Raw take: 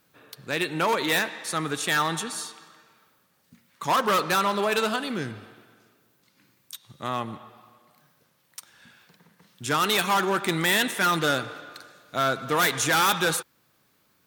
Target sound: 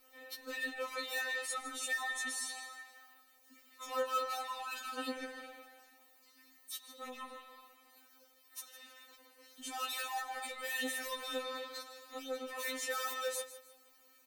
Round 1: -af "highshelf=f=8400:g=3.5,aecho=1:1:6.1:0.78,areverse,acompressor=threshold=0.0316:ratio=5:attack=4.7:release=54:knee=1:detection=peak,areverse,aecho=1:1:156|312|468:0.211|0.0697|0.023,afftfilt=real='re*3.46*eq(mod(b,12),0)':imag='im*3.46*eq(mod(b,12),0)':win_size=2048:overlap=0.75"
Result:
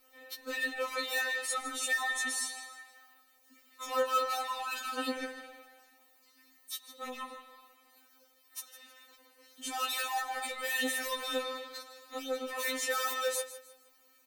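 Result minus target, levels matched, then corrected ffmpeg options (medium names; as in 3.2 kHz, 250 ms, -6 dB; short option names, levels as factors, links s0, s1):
compression: peak gain reduction -5 dB
-af "highshelf=f=8400:g=3.5,aecho=1:1:6.1:0.78,areverse,acompressor=threshold=0.015:ratio=5:attack=4.7:release=54:knee=1:detection=peak,areverse,aecho=1:1:156|312|468:0.211|0.0697|0.023,afftfilt=real='re*3.46*eq(mod(b,12),0)':imag='im*3.46*eq(mod(b,12),0)':win_size=2048:overlap=0.75"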